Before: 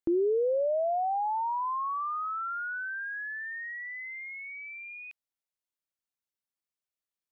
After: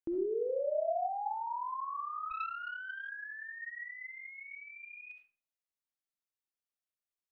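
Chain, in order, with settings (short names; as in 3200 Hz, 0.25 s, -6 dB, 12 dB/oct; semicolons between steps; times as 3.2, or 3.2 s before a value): digital reverb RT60 0.47 s, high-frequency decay 0.6×, pre-delay 25 ms, DRR 2 dB; 2.3–3.09 Doppler distortion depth 0.52 ms; gain -8.5 dB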